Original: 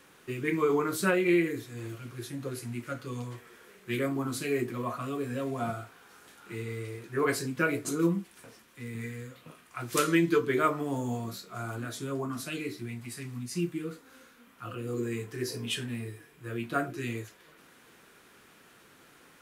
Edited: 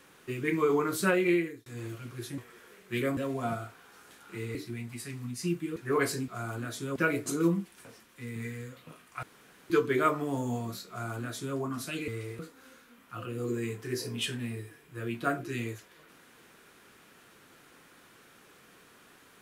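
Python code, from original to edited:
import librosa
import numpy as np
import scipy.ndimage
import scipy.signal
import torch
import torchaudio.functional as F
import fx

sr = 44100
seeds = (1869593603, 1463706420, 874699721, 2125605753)

y = fx.edit(x, sr, fx.fade_out_span(start_s=1.26, length_s=0.4),
    fx.cut(start_s=2.38, length_s=0.97),
    fx.cut(start_s=4.14, length_s=1.2),
    fx.swap(start_s=6.72, length_s=0.31, other_s=12.67, other_length_s=1.21),
    fx.room_tone_fill(start_s=9.82, length_s=0.47),
    fx.duplicate(start_s=11.48, length_s=0.68, to_s=7.55), tone=tone)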